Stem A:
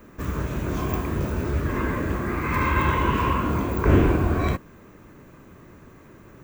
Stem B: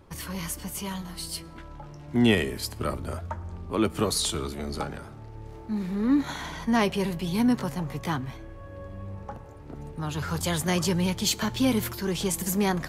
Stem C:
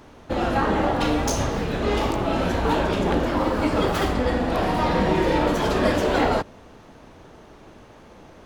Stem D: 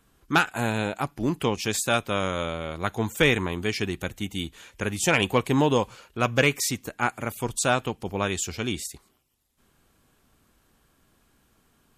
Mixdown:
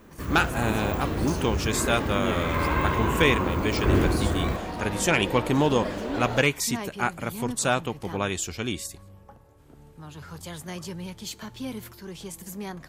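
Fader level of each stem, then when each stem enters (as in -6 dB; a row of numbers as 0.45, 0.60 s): -4.0, -11.0, -11.5, -1.0 dB; 0.00, 0.00, 0.00, 0.00 s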